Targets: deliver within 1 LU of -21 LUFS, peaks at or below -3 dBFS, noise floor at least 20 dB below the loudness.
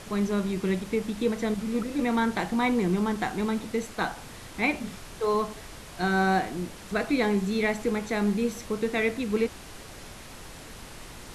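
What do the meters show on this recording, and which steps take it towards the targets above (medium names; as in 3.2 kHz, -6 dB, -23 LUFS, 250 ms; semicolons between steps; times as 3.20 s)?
noise floor -44 dBFS; noise floor target -48 dBFS; loudness -27.5 LUFS; peak level -12.0 dBFS; loudness target -21.0 LUFS
-> noise print and reduce 6 dB; trim +6.5 dB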